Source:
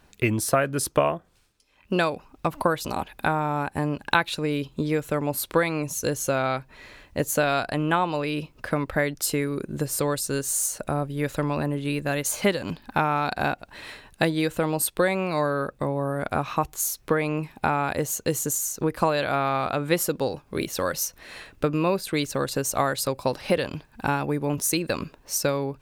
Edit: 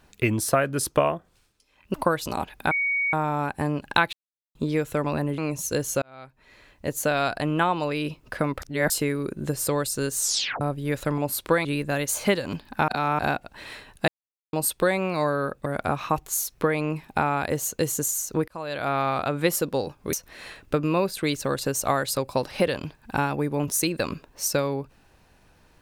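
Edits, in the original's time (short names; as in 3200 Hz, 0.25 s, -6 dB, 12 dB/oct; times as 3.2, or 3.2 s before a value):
1.94–2.53 cut
3.3 add tone 2240 Hz -21.5 dBFS 0.42 s
4.3–4.72 mute
5.23–5.7 swap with 11.5–11.82
6.34–7.6 fade in
8.94–9.22 reverse
10.51 tape stop 0.42 s
13.05–13.36 reverse
14.25–14.7 mute
15.83–16.13 cut
18.95–19.44 fade in
20.6–21.03 cut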